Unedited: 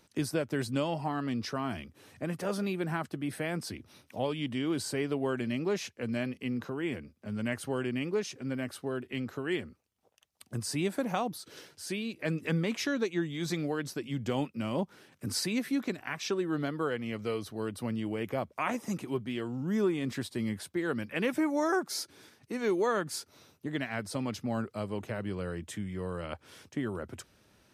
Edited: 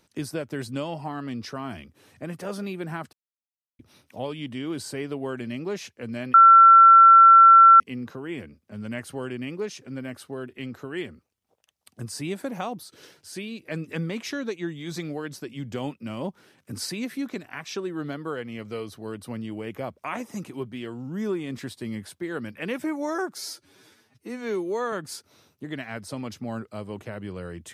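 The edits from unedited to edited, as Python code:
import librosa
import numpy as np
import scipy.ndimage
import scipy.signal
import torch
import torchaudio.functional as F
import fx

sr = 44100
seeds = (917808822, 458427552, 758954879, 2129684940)

y = fx.edit(x, sr, fx.silence(start_s=3.13, length_s=0.66),
    fx.insert_tone(at_s=6.34, length_s=1.46, hz=1350.0, db=-8.0),
    fx.stretch_span(start_s=21.92, length_s=1.03, factor=1.5), tone=tone)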